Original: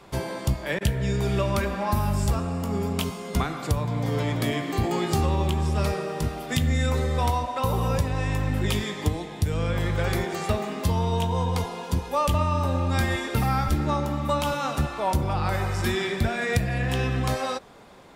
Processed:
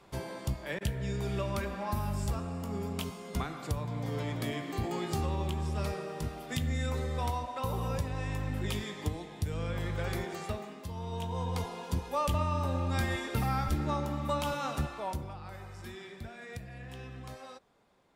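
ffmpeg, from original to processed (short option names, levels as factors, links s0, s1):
-af "volume=1.19,afade=t=out:st=10.3:d=0.58:silence=0.375837,afade=t=in:st=10.88:d=0.79:silence=0.298538,afade=t=out:st=14.76:d=0.62:silence=0.237137"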